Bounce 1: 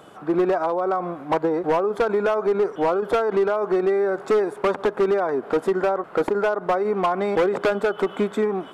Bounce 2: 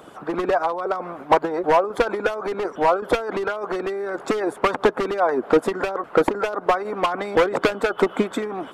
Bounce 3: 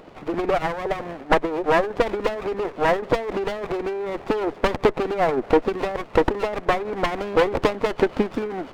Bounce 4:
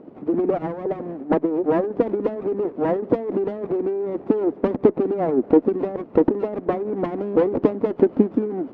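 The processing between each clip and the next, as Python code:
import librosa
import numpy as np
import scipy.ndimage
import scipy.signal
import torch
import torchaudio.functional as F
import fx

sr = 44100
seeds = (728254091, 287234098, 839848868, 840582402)

y1 = fx.hpss(x, sr, part='harmonic', gain_db=-14)
y1 = F.gain(torch.from_numpy(y1), 7.0).numpy()
y2 = scipy.signal.sosfilt(scipy.signal.butter(4, 3900.0, 'lowpass', fs=sr, output='sos'), y1)
y2 = fx.running_max(y2, sr, window=17)
y3 = fx.bandpass_q(y2, sr, hz=270.0, q=1.8)
y3 = F.gain(torch.from_numpy(y3), 8.0).numpy()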